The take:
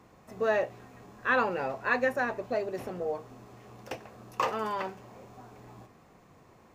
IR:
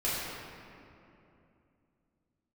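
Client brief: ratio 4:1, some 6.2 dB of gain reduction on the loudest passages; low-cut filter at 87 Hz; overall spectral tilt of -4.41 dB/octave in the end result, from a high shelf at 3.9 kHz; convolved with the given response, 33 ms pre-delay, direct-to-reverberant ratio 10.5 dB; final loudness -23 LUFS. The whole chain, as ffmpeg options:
-filter_complex "[0:a]highpass=87,highshelf=f=3900:g=7,acompressor=threshold=0.0355:ratio=4,asplit=2[s0][s1];[1:a]atrim=start_sample=2205,adelay=33[s2];[s1][s2]afir=irnorm=-1:irlink=0,volume=0.106[s3];[s0][s3]amix=inputs=2:normalize=0,volume=3.98"

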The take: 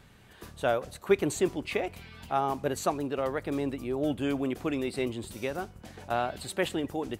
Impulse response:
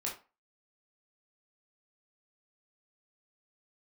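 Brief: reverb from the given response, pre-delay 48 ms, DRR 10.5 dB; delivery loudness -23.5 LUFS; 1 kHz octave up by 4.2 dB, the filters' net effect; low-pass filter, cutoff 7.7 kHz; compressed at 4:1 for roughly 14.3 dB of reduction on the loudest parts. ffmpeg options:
-filter_complex "[0:a]lowpass=7700,equalizer=f=1000:t=o:g=6,acompressor=threshold=0.0178:ratio=4,asplit=2[s0][s1];[1:a]atrim=start_sample=2205,adelay=48[s2];[s1][s2]afir=irnorm=-1:irlink=0,volume=0.237[s3];[s0][s3]amix=inputs=2:normalize=0,volume=5.96"

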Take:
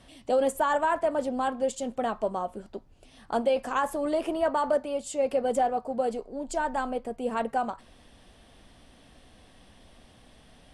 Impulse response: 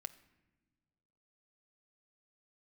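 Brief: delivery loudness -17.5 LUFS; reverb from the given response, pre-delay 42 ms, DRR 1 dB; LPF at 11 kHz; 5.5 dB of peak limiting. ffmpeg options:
-filter_complex "[0:a]lowpass=11000,alimiter=limit=0.1:level=0:latency=1,asplit=2[s0][s1];[1:a]atrim=start_sample=2205,adelay=42[s2];[s1][s2]afir=irnorm=-1:irlink=0,volume=1.41[s3];[s0][s3]amix=inputs=2:normalize=0,volume=3.16"

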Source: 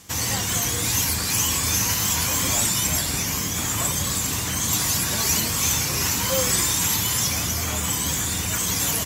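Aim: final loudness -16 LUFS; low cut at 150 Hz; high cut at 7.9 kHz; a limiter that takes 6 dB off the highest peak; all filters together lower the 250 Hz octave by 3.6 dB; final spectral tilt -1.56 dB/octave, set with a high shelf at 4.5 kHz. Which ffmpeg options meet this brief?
-af "highpass=150,lowpass=7900,equalizer=f=250:t=o:g=-3.5,highshelf=f=4500:g=6,volume=1.88,alimiter=limit=0.398:level=0:latency=1"

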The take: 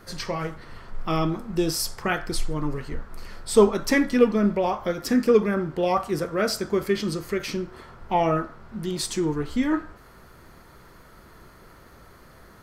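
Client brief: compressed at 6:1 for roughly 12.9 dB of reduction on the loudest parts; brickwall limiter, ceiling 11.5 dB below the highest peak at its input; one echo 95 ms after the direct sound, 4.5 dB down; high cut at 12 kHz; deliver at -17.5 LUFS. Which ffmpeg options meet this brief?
-af "lowpass=12000,acompressor=threshold=0.0562:ratio=6,alimiter=level_in=1.33:limit=0.0631:level=0:latency=1,volume=0.75,aecho=1:1:95:0.596,volume=7.08"

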